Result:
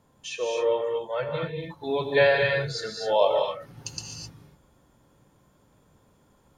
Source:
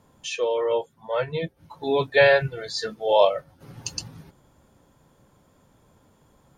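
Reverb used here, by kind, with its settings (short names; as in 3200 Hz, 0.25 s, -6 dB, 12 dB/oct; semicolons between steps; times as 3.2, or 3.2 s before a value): non-linear reverb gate 0.28 s rising, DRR 1.5 dB; gain -4.5 dB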